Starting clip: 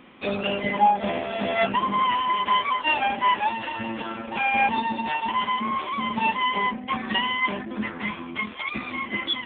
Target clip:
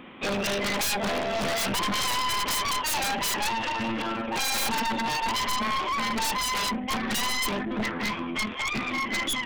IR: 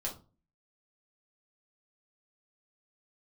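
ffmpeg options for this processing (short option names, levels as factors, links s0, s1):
-af "aeval=exprs='0.398*(cos(1*acos(clip(val(0)/0.398,-1,1)))-cos(1*PI/2))+0.0224*(cos(4*acos(clip(val(0)/0.398,-1,1)))-cos(4*PI/2))+0.00355*(cos(5*acos(clip(val(0)/0.398,-1,1)))-cos(5*PI/2))+0.112*(cos(7*acos(clip(val(0)/0.398,-1,1)))-cos(7*PI/2))+0.0141*(cos(8*acos(clip(val(0)/0.398,-1,1)))-cos(8*PI/2))':c=same,aeval=exprs='0.0447*(abs(mod(val(0)/0.0447+3,4)-2)-1)':c=same,volume=1.78"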